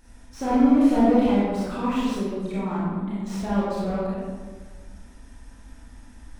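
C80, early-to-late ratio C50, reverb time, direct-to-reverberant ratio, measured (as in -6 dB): 0.5 dB, -3.0 dB, 1.5 s, -9.0 dB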